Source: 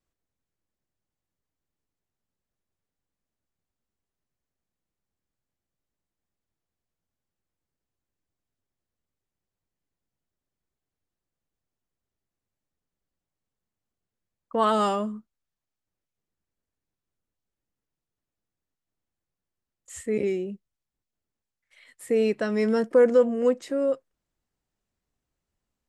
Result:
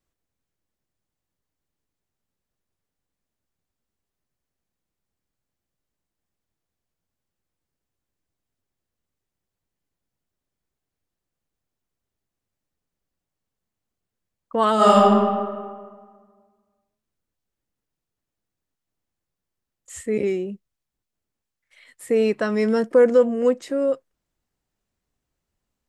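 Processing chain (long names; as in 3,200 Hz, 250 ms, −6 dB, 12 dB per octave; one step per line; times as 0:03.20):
0:14.75–0:15.16: thrown reverb, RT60 1.7 s, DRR −7 dB
0:20.23–0:22.55: dynamic equaliser 1,100 Hz, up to +6 dB, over −48 dBFS, Q 2
level +3 dB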